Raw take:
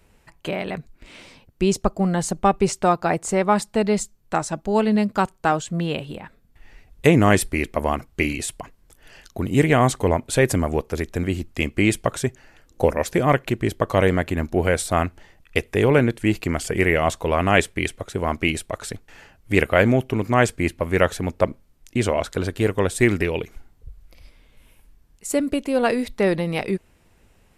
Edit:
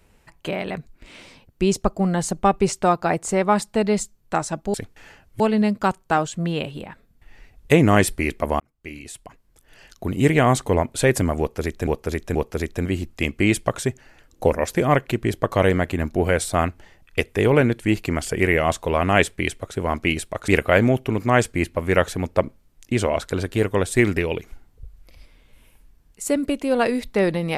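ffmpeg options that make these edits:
-filter_complex "[0:a]asplit=7[a][b][c][d][e][f][g];[a]atrim=end=4.742[h];[b]atrim=start=18.858:end=19.522[i];[c]atrim=start=4.738:end=7.94,asetpts=PTS-STARTPTS,afade=t=out:st=3.198:d=0.004:c=hsin[j];[d]atrim=start=7.94:end=11.212,asetpts=PTS-STARTPTS,afade=t=in:d=1.54[k];[e]atrim=start=10.728:end=11.212[l];[f]atrim=start=10.728:end=18.862[m];[g]atrim=start=19.518[n];[h][i]acrossfade=d=0.004:c1=hsin:c2=hsin[o];[j][k]concat=n=2:v=0:a=1[p];[o][p]acrossfade=d=0.004:c1=hsin:c2=hsin[q];[q][l]acrossfade=d=0.004:c1=hsin:c2=hsin[r];[r][m]acrossfade=d=0.004:c1=hsin:c2=hsin[s];[s][n]acrossfade=d=0.004:c1=hsin:c2=hsin"

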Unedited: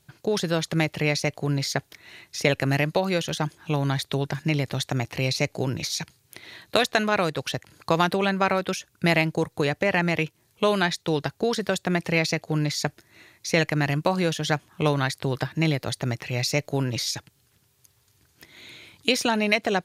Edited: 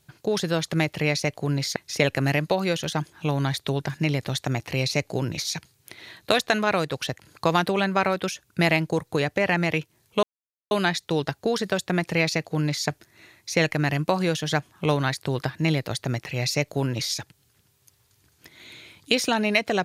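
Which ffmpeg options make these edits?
-filter_complex "[0:a]asplit=3[a][b][c];[a]atrim=end=1.762[d];[b]atrim=start=2.208:end=10.68,asetpts=PTS-STARTPTS,afade=t=out:st=8.468:d=0.004:c=hsin,apad=pad_dur=0.48[e];[c]atrim=start=10.68,asetpts=PTS-STARTPTS,afade=t=in:d=0.004:c=hsin[f];[e][f]concat=n=2:v=0:a=1[g];[d][g]acrossfade=d=0.004:c1=hsin:c2=hsin"

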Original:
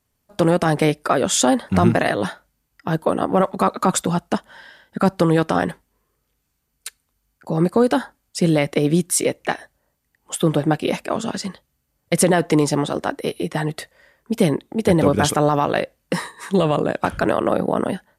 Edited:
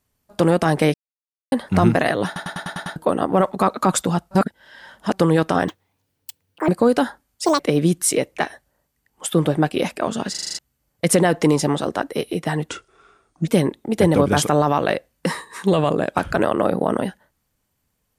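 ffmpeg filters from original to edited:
-filter_complex "[0:a]asplit=25[a][b][c][d][e][f][g][h][i][j][k][l][m][n][o][p][q][r][s][t][u][v][w][x][y];[a]atrim=end=0.94,asetpts=PTS-STARTPTS,afade=t=out:st=0.936:d=0.004:c=hsin[z];[b]atrim=start=0.94:end=1.52,asetpts=PTS-STARTPTS,volume=0[aa];[c]atrim=start=1.52:end=2.362,asetpts=PTS-STARTPTS,afade=t=in:d=0.004:c=hsin[ab];[d]atrim=start=2.258:end=2.362[ac];[e]atrim=start=2.258:end=2.362[ad];[f]atrim=start=2.258:end=2.362[ae];[g]atrim=start=2.258:end=2.362[af];[h]atrim=start=2.258:end=2.362[ag];[i]atrim=start=2.258:end=2.362[ah];[j]atrim=start=2.958:end=4.312[ai];[k]atrim=start=4.308:end=5.132,asetpts=PTS-STARTPTS,areverse[aj];[l]atrim=start=5.128:end=5.684[ak];[m]atrim=start=5.68:end=7.63,asetpts=PTS-STARTPTS,asetrate=85554,aresample=44100,atrim=end_sample=44327,asetpts=PTS-STARTPTS[al];[n]atrim=start=7.626:end=8.404[am];[o]atrim=start=8.4:end=8.68,asetpts=PTS-STARTPTS,asetrate=87318,aresample=44100,atrim=end_sample=6236,asetpts=PTS-STARTPTS[an];[p]atrim=start=8.676:end=11.432[ao];[q]atrim=start=11.388:end=11.432[ap];[r]atrim=start=11.388:end=11.432[aq];[s]atrim=start=11.388:end=11.432[ar];[t]atrim=start=11.388:end=11.432[as];[u]atrim=start=11.388:end=11.432[at];[v]atrim=start=11.388:end=11.432[au];[w]atrim=start=11.668:end=13.774[av];[x]atrim=start=13.77:end=14.35,asetpts=PTS-STARTPTS,asetrate=32193,aresample=44100,atrim=end_sample=35038,asetpts=PTS-STARTPTS[aw];[y]atrim=start=14.346[ax];[z][aa][ab]concat=n=3:v=0:a=1[ay];[ay][ac]acrossfade=d=0.004:c1=hsin:c2=hsin[az];[az][ad]acrossfade=d=0.004:c1=hsin:c2=hsin[ba];[ba][ae]acrossfade=d=0.004:c1=hsin:c2=hsin[bb];[bb][af]acrossfade=d=0.004:c1=hsin:c2=hsin[bc];[bc][ag]acrossfade=d=0.004:c1=hsin:c2=hsin[bd];[bd][ah]acrossfade=d=0.004:c1=hsin:c2=hsin[be];[be][ai]acrossfade=d=0.004:c1=hsin:c2=hsin[bf];[bf][aj]acrossfade=d=0.004:c1=hsin:c2=hsin[bg];[bg][ak]acrossfade=d=0.004:c1=hsin:c2=hsin[bh];[bh][al]acrossfade=d=0.004:c1=hsin:c2=hsin[bi];[bi][am]acrossfade=d=0.004:c1=hsin:c2=hsin[bj];[bj][an]acrossfade=d=0.004:c1=hsin:c2=hsin[bk];[bk][ao]acrossfade=d=0.004:c1=hsin:c2=hsin[bl];[bl][ap]acrossfade=d=0.004:c1=hsin:c2=hsin[bm];[bm][aq]acrossfade=d=0.004:c1=hsin:c2=hsin[bn];[bn][ar]acrossfade=d=0.004:c1=hsin:c2=hsin[bo];[bo][as]acrossfade=d=0.004:c1=hsin:c2=hsin[bp];[bp][at]acrossfade=d=0.004:c1=hsin:c2=hsin[bq];[bq][au]acrossfade=d=0.004:c1=hsin:c2=hsin[br];[br][av]acrossfade=d=0.004:c1=hsin:c2=hsin[bs];[bs][aw]acrossfade=d=0.004:c1=hsin:c2=hsin[bt];[bt][ax]acrossfade=d=0.004:c1=hsin:c2=hsin"

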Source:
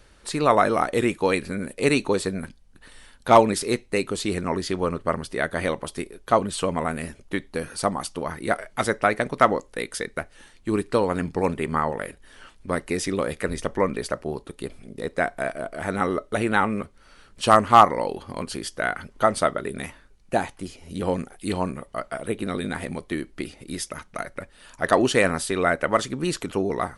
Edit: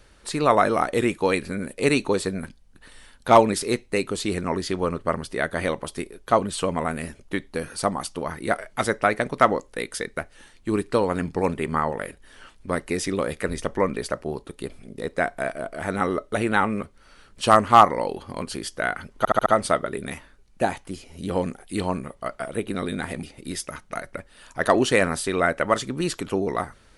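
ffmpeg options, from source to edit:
-filter_complex "[0:a]asplit=6[a][b][c][d][e][f];[a]atrim=end=19.252[g];[b]atrim=start=19.178:end=19.252[h];[c]atrim=start=19.178:end=19.252[i];[d]atrim=start=19.178:end=19.252[j];[e]atrim=start=19.178:end=22.952[k];[f]atrim=start=23.458[l];[g][h]acrossfade=d=0.004:c1=hsin:c2=hsin[m];[m][i]acrossfade=d=0.004:c1=hsin:c2=hsin[n];[n][j]acrossfade=d=0.004:c1=hsin:c2=hsin[o];[o][k]acrossfade=d=0.004:c1=hsin:c2=hsin[p];[p][l]acrossfade=d=0.004:c1=hsin:c2=hsin"

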